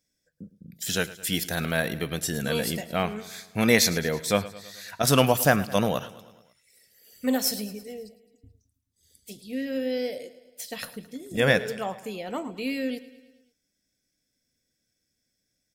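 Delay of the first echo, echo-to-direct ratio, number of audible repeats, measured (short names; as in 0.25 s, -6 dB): 0.108 s, -15.5 dB, 4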